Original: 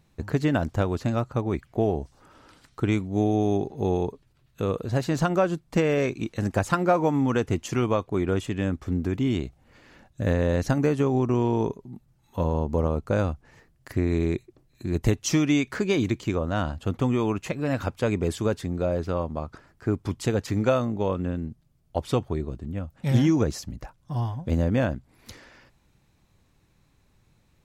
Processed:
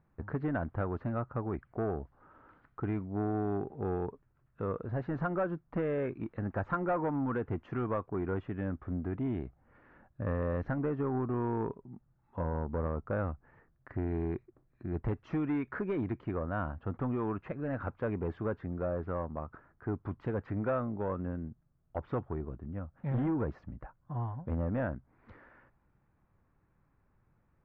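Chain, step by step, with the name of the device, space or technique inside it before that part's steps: overdriven synthesiser ladder filter (soft clip -18.5 dBFS, distortion -14 dB; ladder low-pass 1800 Hz, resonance 35%)

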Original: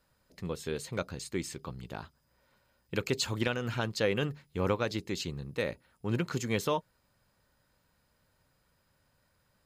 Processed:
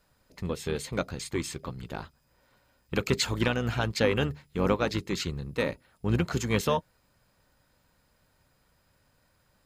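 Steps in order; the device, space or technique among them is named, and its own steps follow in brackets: octave pedal (harmoniser -12 st -8 dB); gain +3.5 dB

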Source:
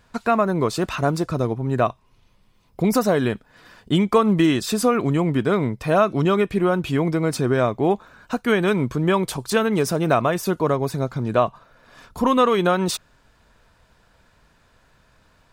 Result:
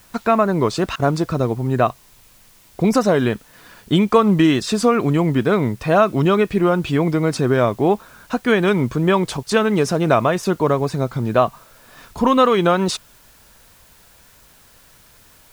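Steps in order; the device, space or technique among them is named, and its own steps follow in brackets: worn cassette (LPF 7700 Hz; wow and flutter; level dips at 0.96/9.43, 34 ms -21 dB; white noise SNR 33 dB); gain +3 dB

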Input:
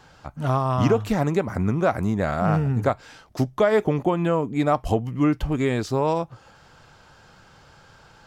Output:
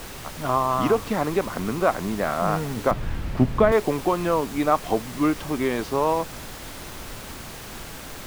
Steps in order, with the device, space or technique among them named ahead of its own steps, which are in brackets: horn gramophone (BPF 230–3900 Hz; bell 1100 Hz +5.5 dB 0.33 oct; wow and flutter; pink noise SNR 12 dB); 2.91–3.72 tone controls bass +14 dB, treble -11 dB

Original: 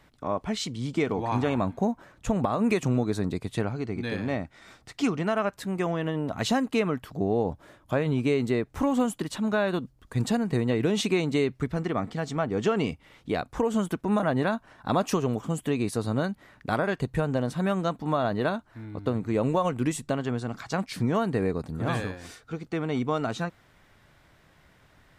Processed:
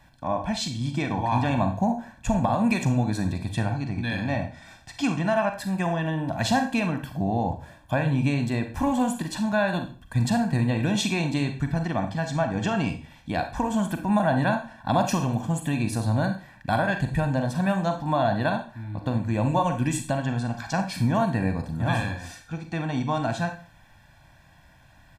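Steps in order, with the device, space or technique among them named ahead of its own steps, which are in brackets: microphone above a desk (comb 1.2 ms, depth 83%; reverb RT60 0.40 s, pre-delay 34 ms, DRR 6 dB)

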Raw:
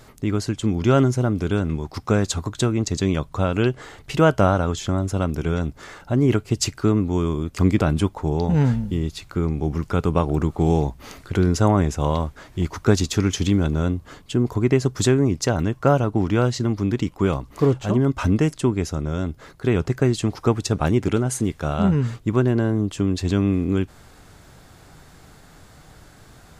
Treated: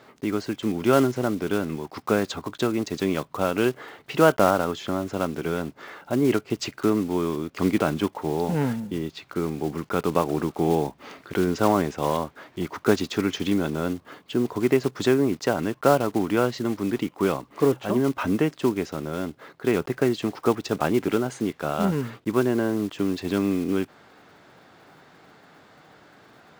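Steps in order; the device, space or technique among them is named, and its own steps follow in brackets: early digital voice recorder (BPF 240–3500 Hz; block floating point 5-bit)

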